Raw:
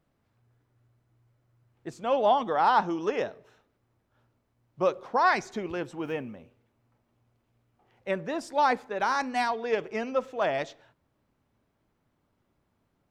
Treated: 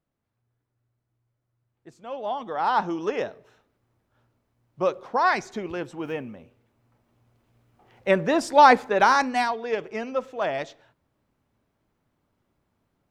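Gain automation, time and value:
2.18 s -9 dB
2.85 s +1.5 dB
6.24 s +1.5 dB
8.28 s +10 dB
9 s +10 dB
9.6 s +0.5 dB

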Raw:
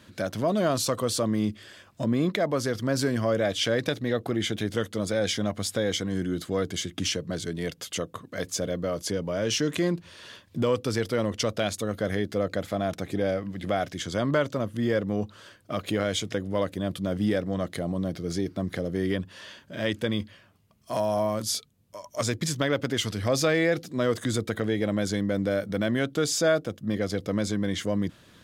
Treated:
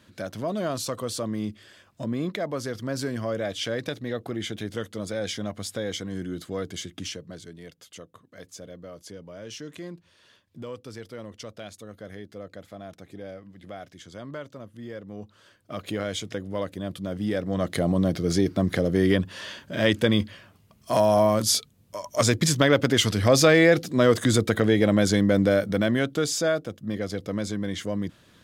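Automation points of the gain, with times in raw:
6.84 s -4 dB
7.64 s -13 dB
15 s -13 dB
15.86 s -3 dB
17.24 s -3 dB
17.81 s +6.5 dB
25.41 s +6.5 dB
26.56 s -2 dB

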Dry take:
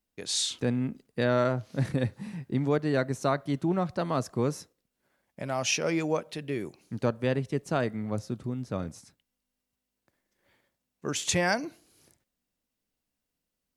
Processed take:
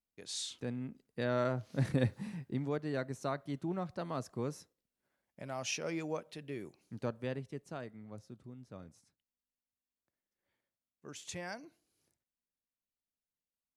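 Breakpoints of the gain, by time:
0.89 s -11.5 dB
2.14 s -1.5 dB
2.68 s -10 dB
7.18 s -10 dB
7.88 s -17 dB

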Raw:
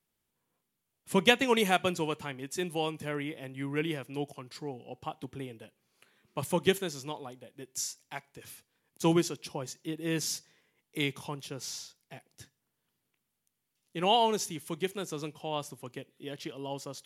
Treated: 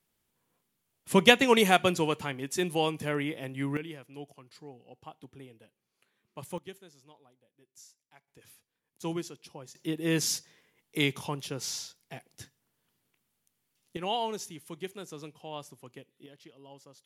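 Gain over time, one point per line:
+4 dB
from 3.77 s -8.5 dB
from 6.58 s -19 dB
from 8.28 s -8.5 dB
from 9.75 s +4 dB
from 13.97 s -6 dB
from 16.26 s -13.5 dB

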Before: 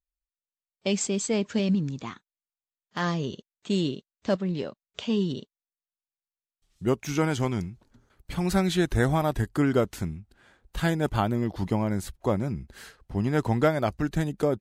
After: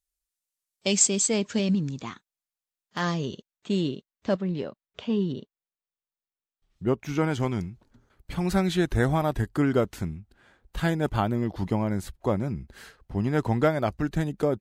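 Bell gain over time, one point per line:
bell 9500 Hz 2.2 oct
1.04 s +11.5 dB
1.72 s +3 dB
3.14 s +3 dB
3.74 s -5.5 dB
4.38 s -5.5 dB
5.06 s -14.5 dB
6.87 s -14.5 dB
7.5 s -3.5 dB

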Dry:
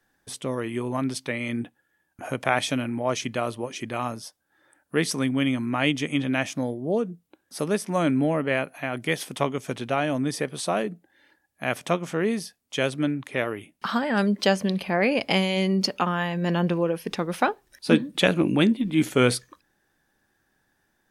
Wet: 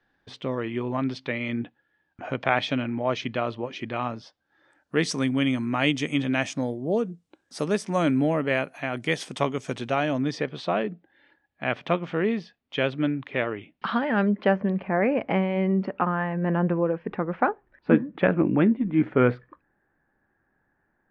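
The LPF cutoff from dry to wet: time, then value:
LPF 24 dB/oct
4.24 s 4200 Hz
5.21 s 8100 Hz
9.83 s 8100 Hz
10.74 s 3600 Hz
13.87 s 3600 Hz
14.59 s 1900 Hz

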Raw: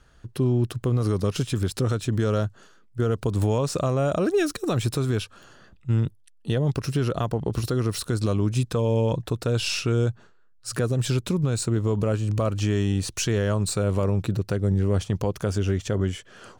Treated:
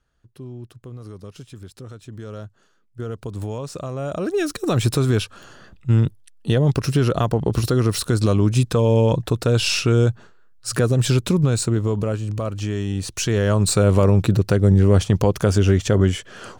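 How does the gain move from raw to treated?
1.91 s -14 dB
3.04 s -6 dB
3.88 s -6 dB
4.84 s +6 dB
11.45 s +6 dB
12.35 s -1.5 dB
12.86 s -1.5 dB
13.74 s +8 dB

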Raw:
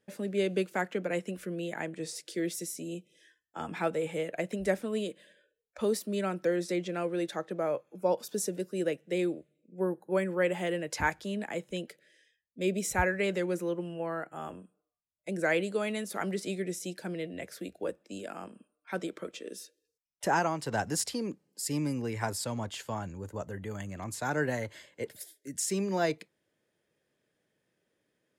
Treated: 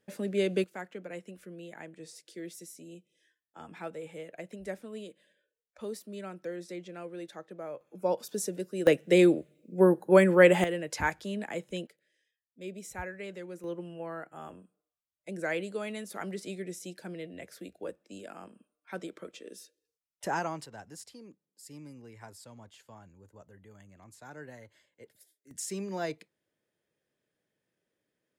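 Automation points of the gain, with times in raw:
+1 dB
from 0.64 s -9.5 dB
from 7.81 s -1 dB
from 8.87 s +9.5 dB
from 10.64 s -0.5 dB
from 11.87 s -11.5 dB
from 13.64 s -4.5 dB
from 20.66 s -16 dB
from 25.51 s -5.5 dB

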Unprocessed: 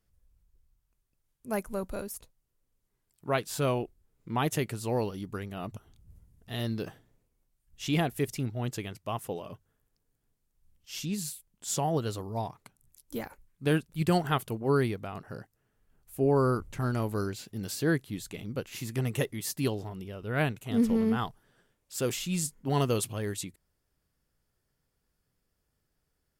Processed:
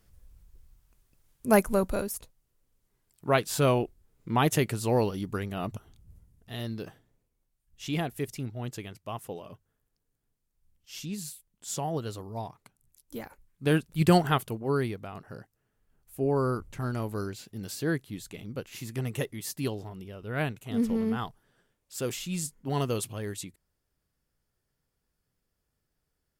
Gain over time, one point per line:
1.5 s +11.5 dB
2.15 s +4.5 dB
5.67 s +4.5 dB
6.65 s -3 dB
13.22 s -3 dB
14.11 s +5.5 dB
14.67 s -2 dB

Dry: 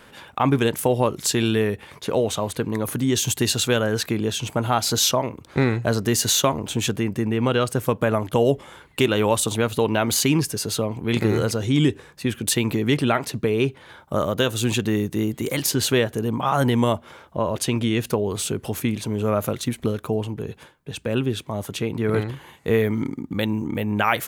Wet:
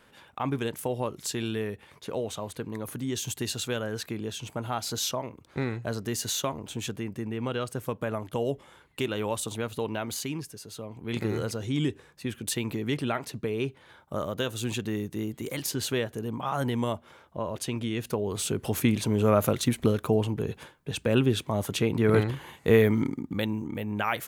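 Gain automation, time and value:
9.9 s -10.5 dB
10.68 s -18 dB
11.17 s -9 dB
17.96 s -9 dB
18.84 s 0 dB
22.87 s 0 dB
23.7 s -8 dB

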